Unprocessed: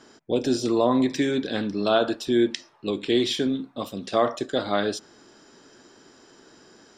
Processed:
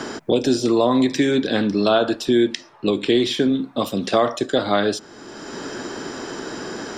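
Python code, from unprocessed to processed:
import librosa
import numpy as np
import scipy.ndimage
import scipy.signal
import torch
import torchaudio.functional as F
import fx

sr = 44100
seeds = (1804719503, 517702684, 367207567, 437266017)

y = fx.band_squash(x, sr, depth_pct=70)
y = y * 10.0 ** (5.0 / 20.0)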